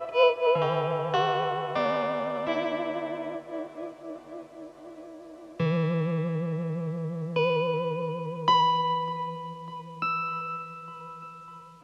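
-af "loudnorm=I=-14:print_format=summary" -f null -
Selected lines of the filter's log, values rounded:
Input Integrated:    -28.4 LUFS
Input True Peak:      -9.6 dBTP
Input LRA:             6.6 LU
Input Threshold:     -39.6 LUFS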